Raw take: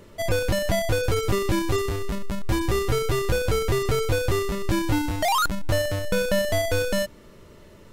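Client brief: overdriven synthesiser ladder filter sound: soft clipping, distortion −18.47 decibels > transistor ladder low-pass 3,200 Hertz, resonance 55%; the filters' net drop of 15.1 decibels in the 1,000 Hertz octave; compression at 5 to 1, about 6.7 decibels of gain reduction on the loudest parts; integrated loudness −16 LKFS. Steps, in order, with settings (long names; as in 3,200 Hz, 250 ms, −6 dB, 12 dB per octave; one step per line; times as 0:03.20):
parametric band 1,000 Hz −8.5 dB
downward compressor 5 to 1, threshold −26 dBFS
soft clipping −23.5 dBFS
transistor ladder low-pass 3,200 Hz, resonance 55%
level +26 dB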